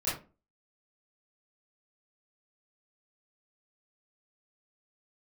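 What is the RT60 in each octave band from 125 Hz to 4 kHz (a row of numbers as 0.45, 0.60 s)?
0.35, 0.40, 0.35, 0.30, 0.25, 0.20 s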